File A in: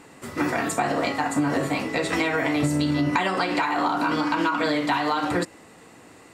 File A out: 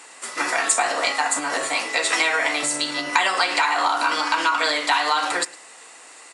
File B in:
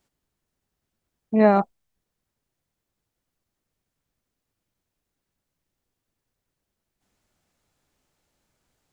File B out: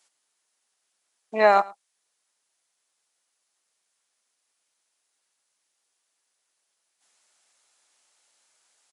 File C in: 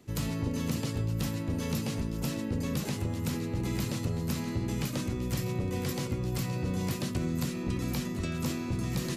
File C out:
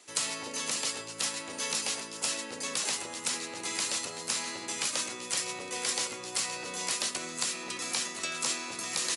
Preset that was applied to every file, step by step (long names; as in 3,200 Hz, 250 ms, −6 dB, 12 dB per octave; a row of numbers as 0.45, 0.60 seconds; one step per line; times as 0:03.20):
high-pass filter 730 Hz 12 dB per octave
high-shelf EQ 4,300 Hz +10.5 dB
on a send: single-tap delay 109 ms −22 dB
on the sum: level +5 dB
MP3 80 kbit/s 24,000 Hz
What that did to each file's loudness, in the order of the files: +3.5, −1.5, +1.0 LU